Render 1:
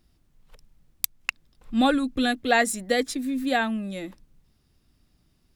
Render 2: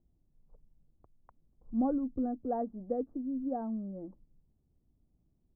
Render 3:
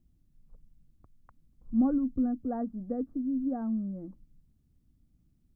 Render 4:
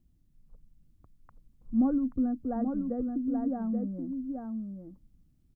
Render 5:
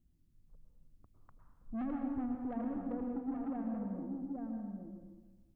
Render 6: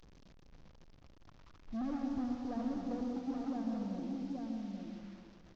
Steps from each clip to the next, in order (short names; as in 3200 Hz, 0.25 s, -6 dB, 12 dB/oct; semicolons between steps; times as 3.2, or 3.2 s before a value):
Bessel low-pass 550 Hz, order 8; gain -7 dB
band shelf 590 Hz -9 dB; gain +5.5 dB
echo 0.83 s -5 dB
soft clip -30.5 dBFS, distortion -9 dB; plate-style reverb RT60 1.3 s, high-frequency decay 0.9×, pre-delay 95 ms, DRR 2.5 dB; gain -5 dB
delta modulation 32 kbps, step -53 dBFS; echo 0.394 s -10 dB